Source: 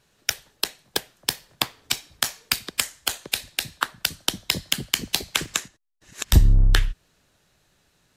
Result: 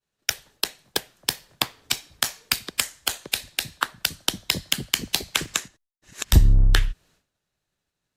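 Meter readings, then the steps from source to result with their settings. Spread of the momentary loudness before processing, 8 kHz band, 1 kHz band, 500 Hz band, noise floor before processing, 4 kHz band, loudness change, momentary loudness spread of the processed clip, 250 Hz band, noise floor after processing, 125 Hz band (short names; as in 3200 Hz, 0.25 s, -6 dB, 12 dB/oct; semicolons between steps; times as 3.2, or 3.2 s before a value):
9 LU, 0.0 dB, 0.0 dB, 0.0 dB, -66 dBFS, 0.0 dB, 0.0 dB, 9 LU, 0.0 dB, -83 dBFS, 0.0 dB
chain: expander -53 dBFS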